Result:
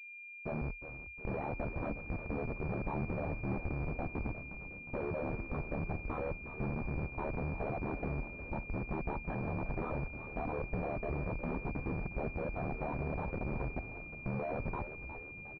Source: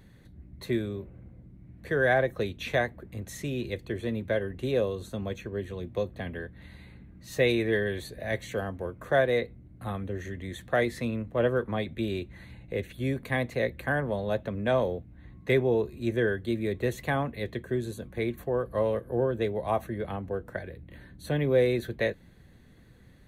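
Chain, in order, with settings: repeated pitch sweeps +12 st, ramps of 0.924 s; gate with hold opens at -43 dBFS; bell 97 Hz +11 dB 0.56 oct; plain phase-vocoder stretch 0.67×; Schmitt trigger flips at -35 dBFS; flange 0.1 Hz, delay 1 ms, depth 7.8 ms, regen +90%; ring modulator 37 Hz; frequency-shifting echo 0.359 s, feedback 58%, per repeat -99 Hz, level -11 dB; pulse-width modulation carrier 2400 Hz; gain +5.5 dB

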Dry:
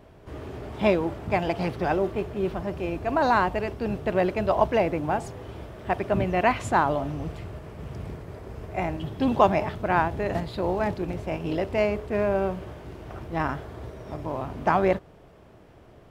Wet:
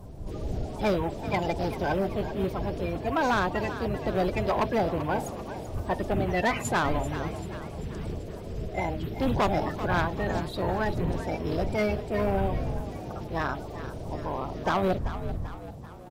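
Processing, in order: bin magnitudes rounded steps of 30 dB; wind noise 100 Hz -36 dBFS; soft clip -19 dBFS, distortion -12 dB; high shelf 8300 Hz +11.5 dB; on a send: frequency-shifting echo 0.388 s, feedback 49%, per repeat +54 Hz, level -12.5 dB

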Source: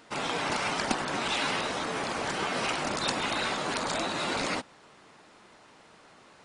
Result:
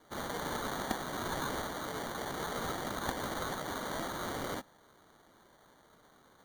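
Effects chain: sample-and-hold 17×; gain -7 dB

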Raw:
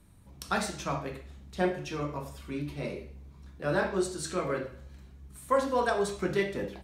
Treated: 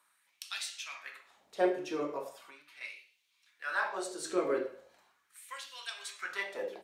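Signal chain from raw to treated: 2.33–2.81 compressor, threshold -38 dBFS, peak gain reduction 7.5 dB; LFO high-pass sine 0.39 Hz 350–3000 Hz; gain -4 dB

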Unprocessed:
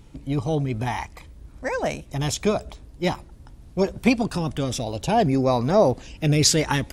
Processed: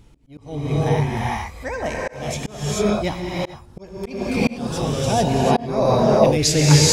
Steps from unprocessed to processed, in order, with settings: non-linear reverb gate 0.47 s rising, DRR -5.5 dB; auto swell 0.374 s; gain -1.5 dB

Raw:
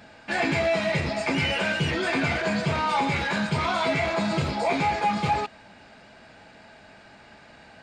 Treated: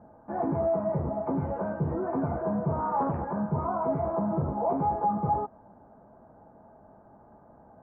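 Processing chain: steep low-pass 1100 Hz 36 dB/oct; 2.79–3.25 Doppler distortion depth 0.47 ms; gain -2 dB

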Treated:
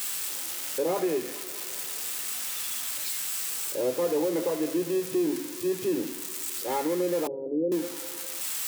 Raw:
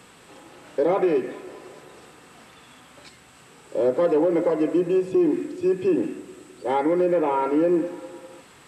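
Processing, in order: switching spikes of -17 dBFS; 7.27–7.72 elliptic low-pass 550 Hz, stop band 80 dB; gain -6.5 dB

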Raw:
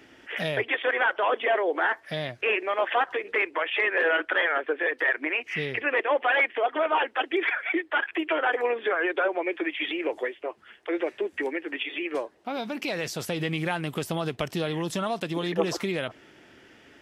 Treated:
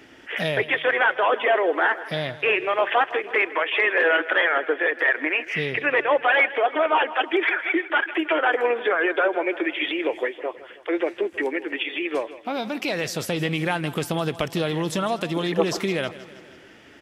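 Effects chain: feedback echo 0.16 s, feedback 55%, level -16.5 dB; gain +4 dB

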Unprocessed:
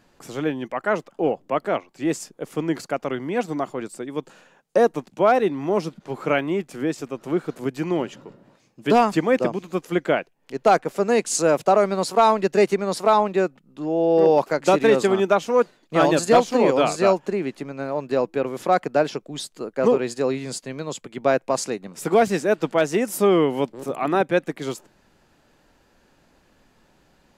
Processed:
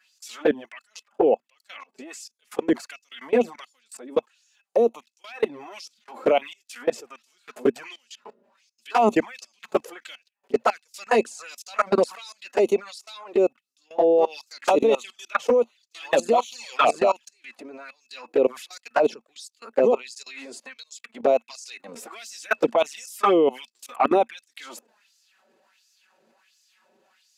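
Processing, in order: low shelf 190 Hz +11 dB; LFO high-pass sine 1.4 Hz 420–5800 Hz; envelope flanger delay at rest 5.4 ms, full sweep at -12 dBFS; level quantiser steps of 24 dB; small resonant body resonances 230/2600 Hz, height 11 dB, ringing for 95 ms; gain +7 dB

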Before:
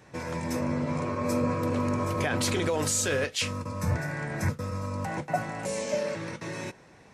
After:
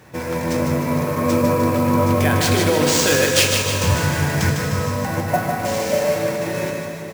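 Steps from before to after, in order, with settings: 3.06–4.91 high shelf 3800 Hz +9 dB; sample-rate reducer 13000 Hz, jitter 20%; feedback echo 0.152 s, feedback 51%, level -5.5 dB; plate-style reverb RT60 4.3 s, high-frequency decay 0.8×, DRR 4 dB; gain +7.5 dB

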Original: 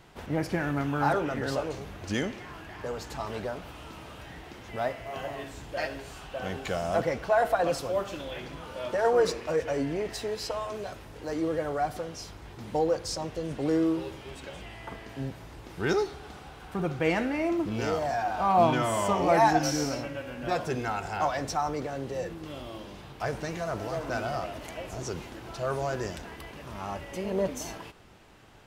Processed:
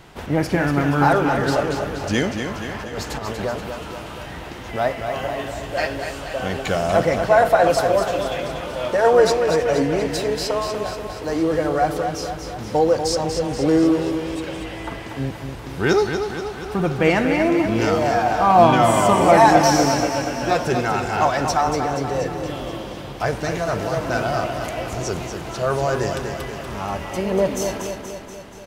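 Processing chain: 2.54–3.45 negative-ratio compressor -37 dBFS, ratio -0.5; feedback echo 0.239 s, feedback 59%, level -7 dB; gain +9 dB

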